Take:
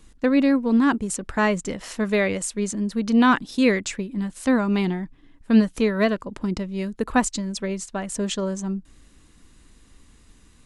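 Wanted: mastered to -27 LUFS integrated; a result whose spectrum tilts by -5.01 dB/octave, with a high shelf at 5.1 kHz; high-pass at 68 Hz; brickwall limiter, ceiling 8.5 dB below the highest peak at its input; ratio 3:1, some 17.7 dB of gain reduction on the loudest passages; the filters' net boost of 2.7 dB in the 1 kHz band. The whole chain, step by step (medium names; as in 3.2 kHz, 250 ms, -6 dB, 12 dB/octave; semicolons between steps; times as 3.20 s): high-pass 68 Hz; peaking EQ 1 kHz +3.5 dB; treble shelf 5.1 kHz -5.5 dB; compression 3:1, threshold -37 dBFS; trim +12 dB; peak limiter -18.5 dBFS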